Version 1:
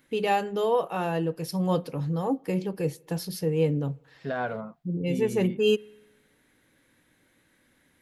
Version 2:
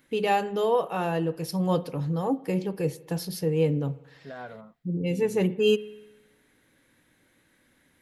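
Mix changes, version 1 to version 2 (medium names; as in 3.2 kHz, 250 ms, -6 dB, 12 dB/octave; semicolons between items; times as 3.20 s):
first voice: send +8.5 dB; second voice -10.0 dB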